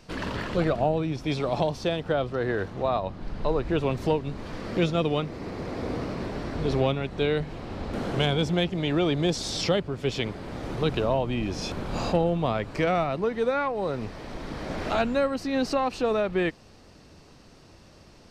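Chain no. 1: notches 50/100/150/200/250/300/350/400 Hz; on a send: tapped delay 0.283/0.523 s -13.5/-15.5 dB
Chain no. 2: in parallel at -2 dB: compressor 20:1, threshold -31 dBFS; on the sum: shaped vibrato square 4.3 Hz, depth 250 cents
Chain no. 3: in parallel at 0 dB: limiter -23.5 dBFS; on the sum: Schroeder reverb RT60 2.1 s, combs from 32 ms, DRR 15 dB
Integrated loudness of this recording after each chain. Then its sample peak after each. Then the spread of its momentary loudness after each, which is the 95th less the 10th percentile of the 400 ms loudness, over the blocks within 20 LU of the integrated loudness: -27.5, -25.5, -24.0 LUFS; -11.5, -10.0, -9.5 dBFS; 9, 8, 7 LU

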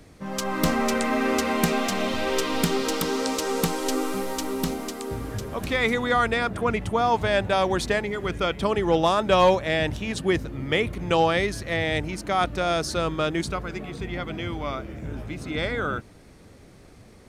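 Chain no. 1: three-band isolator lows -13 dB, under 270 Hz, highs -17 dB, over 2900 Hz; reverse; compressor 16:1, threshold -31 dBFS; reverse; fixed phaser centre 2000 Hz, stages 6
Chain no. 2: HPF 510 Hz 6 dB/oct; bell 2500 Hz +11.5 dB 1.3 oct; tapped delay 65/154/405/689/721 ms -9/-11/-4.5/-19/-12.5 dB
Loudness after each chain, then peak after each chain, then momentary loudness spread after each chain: -41.0, -19.5 LUFS; -25.5, -1.0 dBFS; 5, 12 LU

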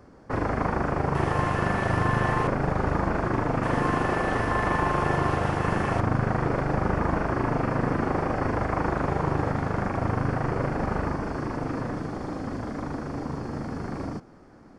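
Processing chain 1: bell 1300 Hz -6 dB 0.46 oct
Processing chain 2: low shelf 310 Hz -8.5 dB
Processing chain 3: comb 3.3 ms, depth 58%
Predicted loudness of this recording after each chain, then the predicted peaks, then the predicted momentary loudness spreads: -27.5, -29.5, -26.0 LUFS; -11.5, -14.0, -10.0 dBFS; 8, 10, 7 LU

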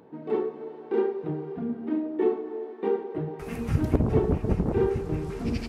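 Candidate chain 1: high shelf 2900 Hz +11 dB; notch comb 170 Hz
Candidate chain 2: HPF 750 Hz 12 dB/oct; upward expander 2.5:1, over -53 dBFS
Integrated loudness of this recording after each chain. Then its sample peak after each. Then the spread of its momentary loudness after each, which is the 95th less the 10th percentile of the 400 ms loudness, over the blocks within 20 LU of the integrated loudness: -29.0, -44.0 LUFS; -8.0, -23.5 dBFS; 9, 20 LU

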